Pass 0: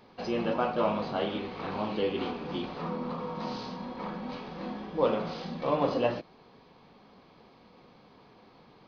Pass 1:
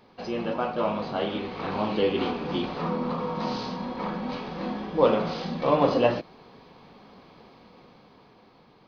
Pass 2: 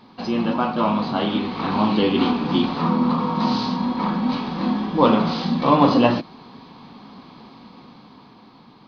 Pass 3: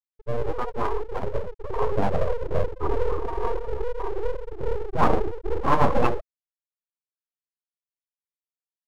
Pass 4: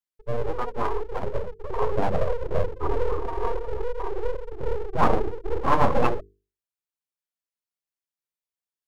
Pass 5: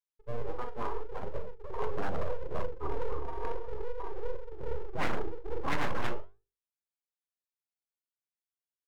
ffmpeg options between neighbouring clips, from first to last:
-af "dynaudnorm=f=260:g=11:m=6dB"
-af "equalizer=f=125:t=o:w=1:g=4,equalizer=f=250:t=o:w=1:g=11,equalizer=f=500:t=o:w=1:g=-5,equalizer=f=1k:t=o:w=1:g=8,equalizer=f=4k:t=o:w=1:g=8,volume=1.5dB"
-filter_complex "[0:a]afftfilt=real='re*gte(hypot(re,im),0.355)':imag='im*gte(hypot(re,im),0.355)':win_size=1024:overlap=0.75,acrossover=split=860[a][b];[a]aeval=exprs='abs(val(0))':c=same[c];[c][b]amix=inputs=2:normalize=0"
-af "bandreject=f=50:t=h:w=6,bandreject=f=100:t=h:w=6,bandreject=f=150:t=h:w=6,bandreject=f=200:t=h:w=6,bandreject=f=250:t=h:w=6,bandreject=f=300:t=h:w=6,bandreject=f=350:t=h:w=6,bandreject=f=400:t=h:w=6,bandreject=f=450:t=h:w=6"
-filter_complex "[0:a]asplit=2[a][b];[b]adelay=42,volume=-10dB[c];[a][c]amix=inputs=2:normalize=0,flanger=delay=6:depth=8.2:regen=77:speed=0.75:shape=sinusoidal,aeval=exprs='0.168*(abs(mod(val(0)/0.168+3,4)-2)-1)':c=same,volume=-5dB"

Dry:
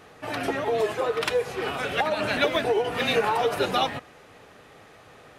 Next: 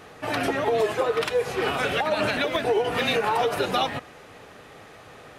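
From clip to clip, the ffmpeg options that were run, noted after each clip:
-af "alimiter=limit=-17.5dB:level=0:latency=1:release=202,volume=4dB"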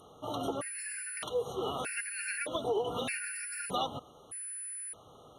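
-af "aeval=exprs='val(0)+0.0316*sin(2*PI*10000*n/s)':c=same,afftfilt=real='re*gt(sin(2*PI*0.81*pts/sr)*(1-2*mod(floor(b*sr/1024/1400),2)),0)':imag='im*gt(sin(2*PI*0.81*pts/sr)*(1-2*mod(floor(b*sr/1024/1400),2)),0)':win_size=1024:overlap=0.75,volume=-8.5dB"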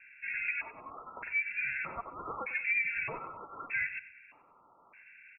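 -af "aecho=1:1:96|192|288:0.168|0.0537|0.0172,lowpass=f=2.4k:t=q:w=0.5098,lowpass=f=2.4k:t=q:w=0.6013,lowpass=f=2.4k:t=q:w=0.9,lowpass=f=2.4k:t=q:w=2.563,afreqshift=-2800"

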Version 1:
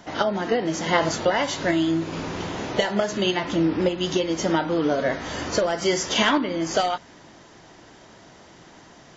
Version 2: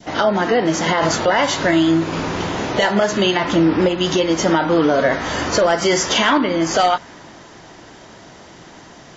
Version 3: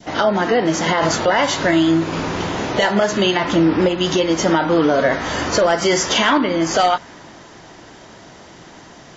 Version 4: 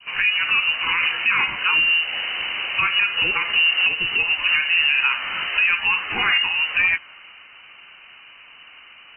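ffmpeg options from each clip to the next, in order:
-af "adynamicequalizer=threshold=0.0224:dfrequency=1200:dqfactor=0.8:tfrequency=1200:tqfactor=0.8:attack=5:release=100:ratio=0.375:range=2:mode=boostabove:tftype=bell,alimiter=limit=-13.5dB:level=0:latency=1:release=32,volume=7dB"
-af anull
-af "lowpass=f=2.6k:t=q:w=0.5098,lowpass=f=2.6k:t=q:w=0.6013,lowpass=f=2.6k:t=q:w=0.9,lowpass=f=2.6k:t=q:w=2.563,afreqshift=-3100,volume=-3.5dB"

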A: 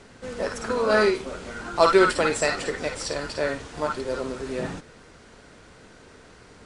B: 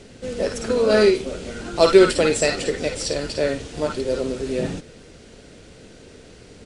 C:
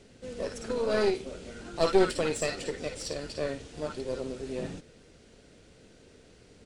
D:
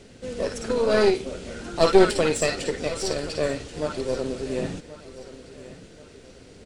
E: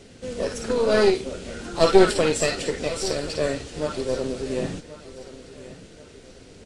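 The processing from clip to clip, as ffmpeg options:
-af "firequalizer=gain_entry='entry(510,0);entry(990,-12);entry(2700,-1)':delay=0.05:min_phase=1,volume=6dB"
-af "aeval=exprs='(tanh(2*val(0)+0.75)-tanh(0.75))/2':c=same,volume=-6.5dB"
-af "aecho=1:1:1080|2160|3240:0.158|0.0571|0.0205,volume=7dB"
-af "volume=1dB" -ar 44100 -c:a libvorbis -b:a 32k

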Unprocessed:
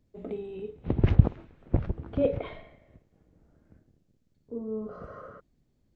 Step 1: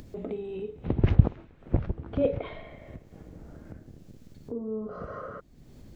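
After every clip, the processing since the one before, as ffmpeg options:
-af "acompressor=mode=upward:threshold=-30dB:ratio=2.5"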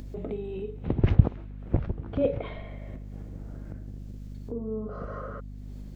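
-af "aeval=exprs='val(0)+0.0112*(sin(2*PI*50*n/s)+sin(2*PI*2*50*n/s)/2+sin(2*PI*3*50*n/s)/3+sin(2*PI*4*50*n/s)/4+sin(2*PI*5*50*n/s)/5)':c=same"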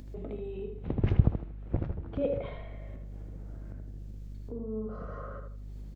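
-filter_complex "[0:a]asplit=2[a][b];[b]adelay=78,lowpass=f=1.7k:p=1,volume=-4dB,asplit=2[c][d];[d]adelay=78,lowpass=f=1.7k:p=1,volume=0.32,asplit=2[e][f];[f]adelay=78,lowpass=f=1.7k:p=1,volume=0.32,asplit=2[g][h];[h]adelay=78,lowpass=f=1.7k:p=1,volume=0.32[i];[a][c][e][g][i]amix=inputs=5:normalize=0,volume=-5.5dB"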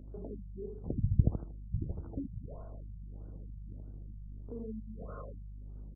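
-af "afftfilt=real='re*lt(b*sr/1024,200*pow(1600/200,0.5+0.5*sin(2*PI*1.6*pts/sr)))':imag='im*lt(b*sr/1024,200*pow(1600/200,0.5+0.5*sin(2*PI*1.6*pts/sr)))':win_size=1024:overlap=0.75,volume=-3.5dB"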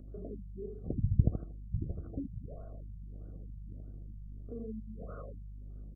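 -af "asuperstop=centerf=920:order=20:qfactor=2.9"

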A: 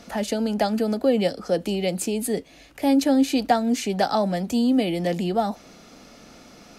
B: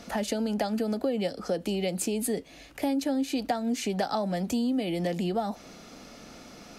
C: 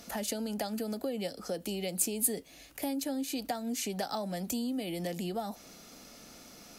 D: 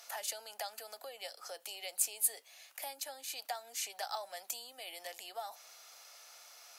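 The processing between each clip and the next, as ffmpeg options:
-af "acompressor=threshold=-26dB:ratio=4"
-af "aemphasis=mode=production:type=50fm,volume=-6.5dB"
-af "highpass=f=710:w=0.5412,highpass=f=710:w=1.3066,volume=-2dB"

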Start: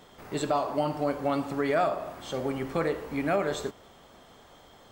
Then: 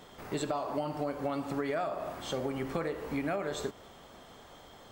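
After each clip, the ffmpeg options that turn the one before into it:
-af "acompressor=threshold=-31dB:ratio=6,volume=1dB"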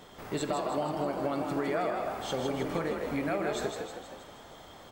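-filter_complex "[0:a]asplit=8[a][b][c][d][e][f][g][h];[b]adelay=158,afreqshift=41,volume=-5dB[i];[c]adelay=316,afreqshift=82,volume=-10dB[j];[d]adelay=474,afreqshift=123,volume=-15.1dB[k];[e]adelay=632,afreqshift=164,volume=-20.1dB[l];[f]adelay=790,afreqshift=205,volume=-25.1dB[m];[g]adelay=948,afreqshift=246,volume=-30.2dB[n];[h]adelay=1106,afreqshift=287,volume=-35.2dB[o];[a][i][j][k][l][m][n][o]amix=inputs=8:normalize=0,volume=1dB"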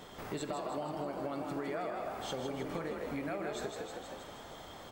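-af "acompressor=threshold=-42dB:ratio=2,volume=1dB"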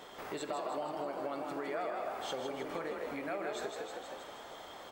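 -af "bass=f=250:g=-13,treble=f=4k:g=-3,volume=1.5dB"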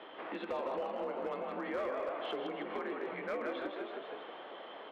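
-af "highpass=f=390:t=q:w=0.5412,highpass=f=390:t=q:w=1.307,lowpass=f=3.4k:t=q:w=0.5176,lowpass=f=3.4k:t=q:w=0.7071,lowpass=f=3.4k:t=q:w=1.932,afreqshift=-100,volume=32dB,asoftclip=hard,volume=-32dB,volume=1.5dB"

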